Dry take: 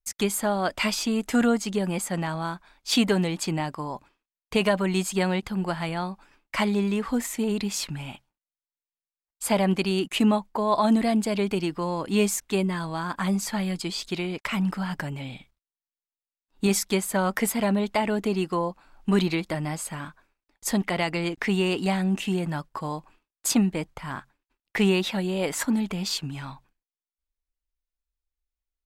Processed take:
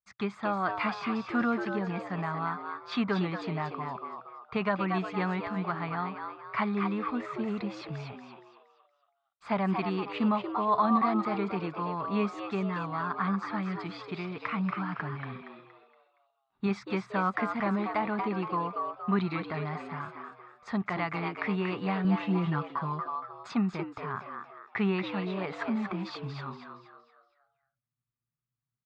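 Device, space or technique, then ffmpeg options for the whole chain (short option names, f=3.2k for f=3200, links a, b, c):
frequency-shifting delay pedal into a guitar cabinet: -filter_complex "[0:a]asplit=6[a][b][c][d][e][f];[b]adelay=234,afreqshift=110,volume=-6dB[g];[c]adelay=468,afreqshift=220,volume=-14.2dB[h];[d]adelay=702,afreqshift=330,volume=-22.4dB[i];[e]adelay=936,afreqshift=440,volume=-30.5dB[j];[f]adelay=1170,afreqshift=550,volume=-38.7dB[k];[a][g][h][i][j][k]amix=inputs=6:normalize=0,highpass=92,equalizer=f=120:t=q:w=4:g=6,equalizer=f=300:t=q:w=4:g=-9,equalizer=f=520:t=q:w=4:g=-9,equalizer=f=1.2k:t=q:w=4:g=10,equalizer=f=3k:t=q:w=4:g=-10,lowpass=f=3.4k:w=0.5412,lowpass=f=3.4k:w=1.3066,asettb=1/sr,asplit=3[l][m][n];[l]atrim=end=22.044[o];[m]atrim=start=22.04:end=23.47,asetpts=PTS-STARTPTS,afade=t=in:d=0.004:c=qsin,afade=t=out:st=1.426:d=0.004:c=qsin,aecho=1:1:6:0.85,atrim=end_sample=63063[p];[n]atrim=start=23.466[q];[o][p]acrossfade=d=0.004:c1=hsin:c2=qsin[r];[r][q]acrossfade=d=0.004:c1=qsin:c2=hsin,volume=-5dB"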